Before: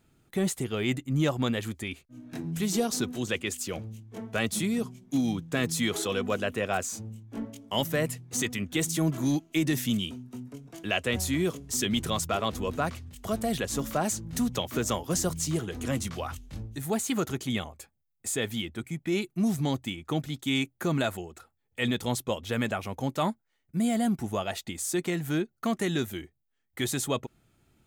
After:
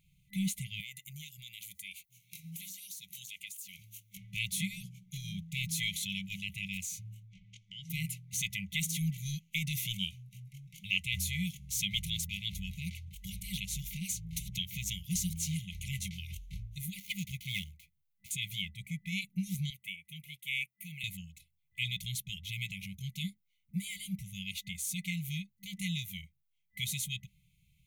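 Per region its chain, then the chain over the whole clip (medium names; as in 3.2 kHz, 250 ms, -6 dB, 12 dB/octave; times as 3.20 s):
0.80–4.17 s: RIAA curve recording + compression 8:1, threshold -39 dBFS
7.28–7.90 s: low-pass 6.6 kHz 24 dB/octave + compression 3:1, threshold -41 dBFS
16.96–18.31 s: dead-time distortion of 0.059 ms + peaking EQ 1.7 kHz +5.5 dB 0.41 oct
19.70–21.04 s: high-pass 990 Hz 6 dB/octave + high-order bell 5.1 kHz -11 dB 1.3 oct
whole clip: graphic EQ with 31 bands 100 Hz -9 dB, 5 kHz -9 dB, 8 kHz -8 dB; FFT band-reject 200–2000 Hz; dynamic bell 140 Hz, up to -4 dB, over -44 dBFS, Q 1.5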